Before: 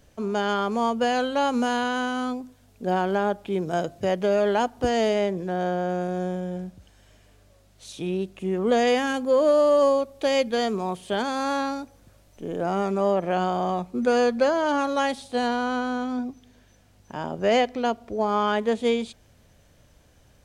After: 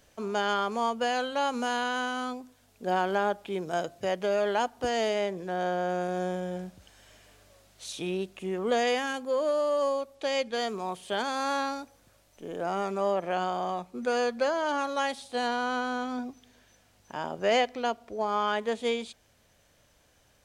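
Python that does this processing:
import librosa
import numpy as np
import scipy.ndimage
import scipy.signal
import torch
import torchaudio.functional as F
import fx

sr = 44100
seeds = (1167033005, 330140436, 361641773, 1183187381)

y = fx.lowpass(x, sr, hz=8700.0, slope=12, at=(10.15, 10.55))
y = fx.low_shelf(y, sr, hz=370.0, db=-10.5)
y = fx.rider(y, sr, range_db=10, speed_s=2.0)
y = y * librosa.db_to_amplitude(-2.5)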